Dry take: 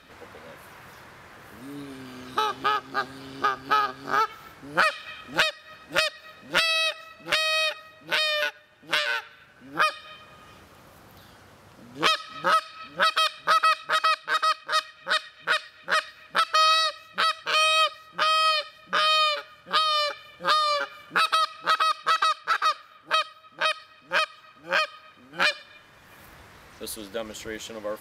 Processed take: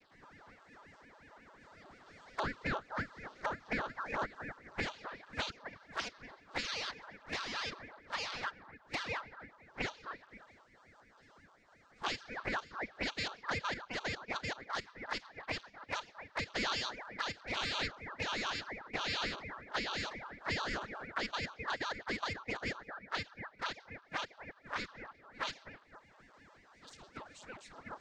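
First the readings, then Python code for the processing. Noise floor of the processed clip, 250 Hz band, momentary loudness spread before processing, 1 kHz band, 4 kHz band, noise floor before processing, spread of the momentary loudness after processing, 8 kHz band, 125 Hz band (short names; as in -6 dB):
-64 dBFS, -4.0 dB, 15 LU, -17.0 dB, -16.0 dB, -53 dBFS, 20 LU, -13.5 dB, 0.0 dB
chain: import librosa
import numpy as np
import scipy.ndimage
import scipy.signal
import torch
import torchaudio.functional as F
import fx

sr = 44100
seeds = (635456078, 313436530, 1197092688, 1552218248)

p1 = fx.vocoder_arp(x, sr, chord='bare fifth', root=59, every_ms=229)
p2 = scipy.signal.sosfilt(scipy.signal.butter(4, 670.0, 'highpass', fs=sr, output='sos'), p1)
p3 = fx.peak_eq(p2, sr, hz=2200.0, db=-14.0, octaves=0.57)
p4 = p3 + fx.echo_bbd(p3, sr, ms=258, stages=2048, feedback_pct=35, wet_db=-9.0, dry=0)
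p5 = fx.env_flanger(p4, sr, rest_ms=8.4, full_db=-25.5)
p6 = fx.ring_lfo(p5, sr, carrier_hz=560.0, swing_pct=85, hz=5.6)
y = F.gain(torch.from_numpy(p6), -1.5).numpy()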